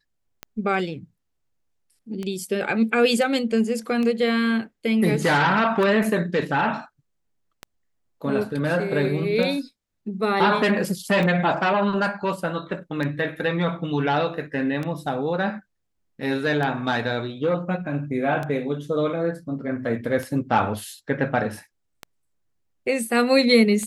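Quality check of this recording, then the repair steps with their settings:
tick 33 1/3 rpm -16 dBFS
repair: de-click

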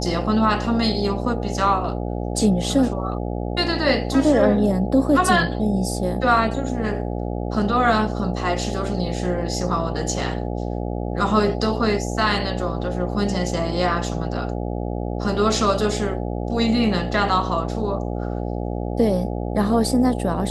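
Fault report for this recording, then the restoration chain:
buzz 60 Hz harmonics 14 -26 dBFS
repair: de-hum 60 Hz, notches 14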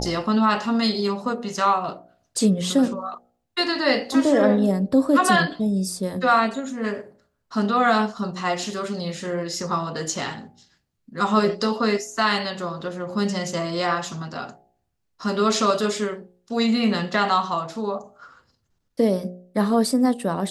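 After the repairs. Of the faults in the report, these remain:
none

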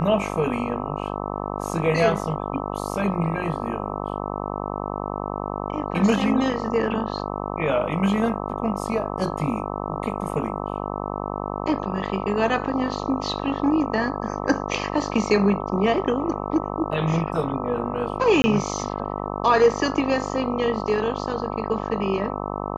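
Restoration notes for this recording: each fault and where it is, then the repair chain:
buzz 50 Hz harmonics 26 -29 dBFS
18.42–18.44 gap 20 ms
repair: de-hum 50 Hz, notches 26; interpolate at 18.42, 20 ms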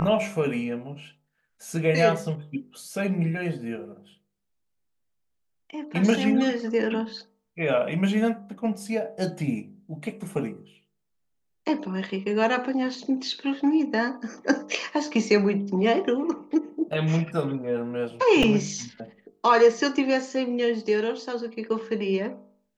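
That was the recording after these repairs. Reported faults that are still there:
none

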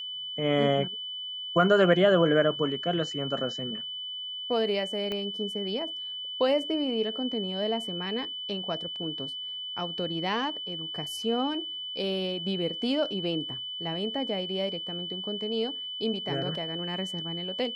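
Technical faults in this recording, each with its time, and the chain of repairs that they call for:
tone 3000 Hz -34 dBFS
5.12 pop -20 dBFS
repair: de-click; notch 3000 Hz, Q 30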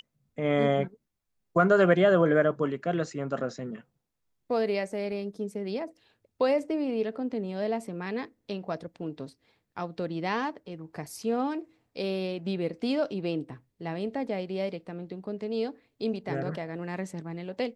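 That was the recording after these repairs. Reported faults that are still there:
5.12 pop

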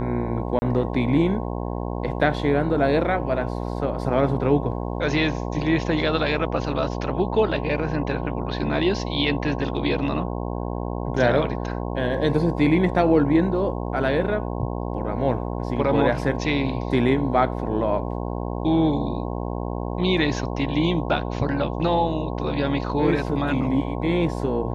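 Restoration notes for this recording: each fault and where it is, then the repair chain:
buzz 60 Hz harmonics 18 -28 dBFS
0.59–0.62 gap 30 ms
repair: de-hum 60 Hz, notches 18; interpolate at 0.59, 30 ms

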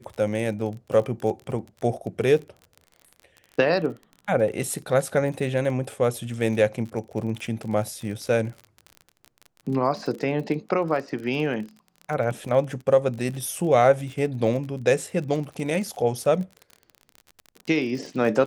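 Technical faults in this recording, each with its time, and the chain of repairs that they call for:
crackle 35/s -32 dBFS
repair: de-click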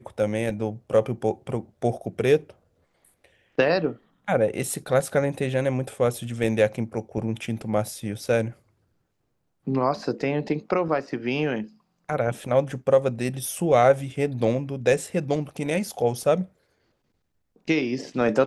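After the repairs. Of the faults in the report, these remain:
none

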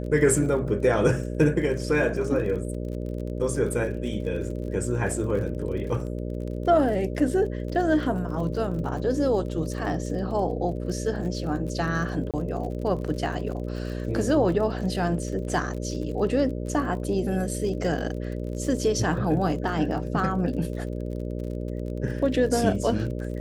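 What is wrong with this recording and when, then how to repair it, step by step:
buzz 60 Hz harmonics 10 -31 dBFS
crackle 41/s -35 dBFS
12.31–12.34 gap 27 ms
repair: de-click; de-hum 60 Hz, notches 10; interpolate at 12.31, 27 ms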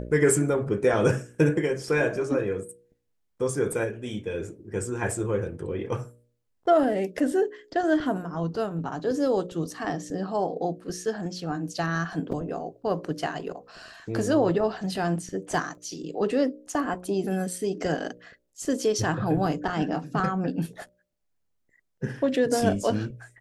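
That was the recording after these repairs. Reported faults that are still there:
none

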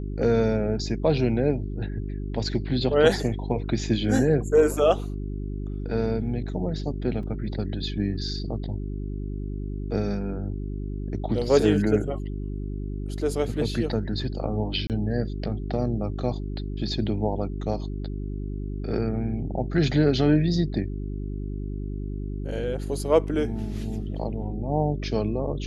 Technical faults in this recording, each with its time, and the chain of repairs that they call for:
hum 50 Hz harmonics 8 -31 dBFS
7.23 gap 3.4 ms
14.87–14.9 gap 28 ms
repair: de-hum 50 Hz, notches 8; interpolate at 7.23, 3.4 ms; interpolate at 14.87, 28 ms

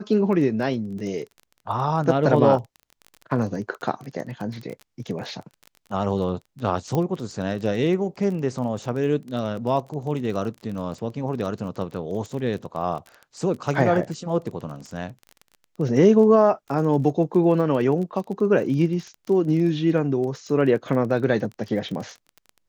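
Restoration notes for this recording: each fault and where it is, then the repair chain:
crackle 22/s -31 dBFS
6.95 pop -13 dBFS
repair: de-click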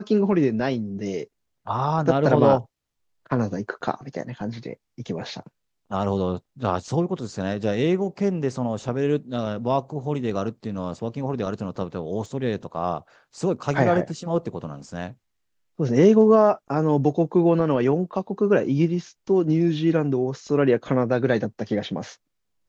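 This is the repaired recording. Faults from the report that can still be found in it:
none

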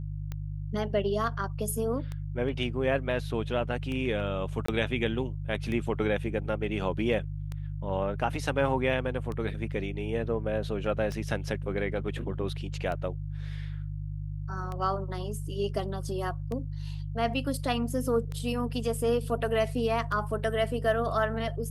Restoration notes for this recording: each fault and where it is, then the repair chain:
hum 50 Hz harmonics 3 -35 dBFS
tick 33 1/3 rpm -23 dBFS
4.66–4.68 gap 24 ms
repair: de-click; de-hum 50 Hz, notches 3; interpolate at 4.66, 24 ms

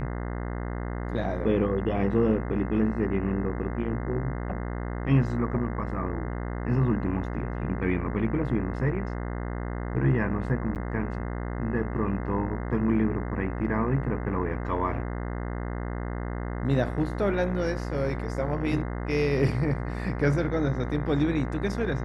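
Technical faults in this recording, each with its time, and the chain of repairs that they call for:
buzz 60 Hz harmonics 35 -32 dBFS
10.75–10.76 gap 8.8 ms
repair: de-hum 60 Hz, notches 35; interpolate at 10.75, 8.8 ms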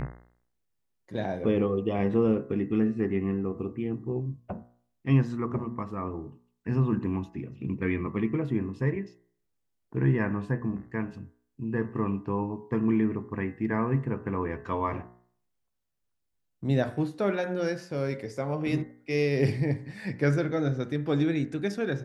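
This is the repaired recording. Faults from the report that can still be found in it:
none

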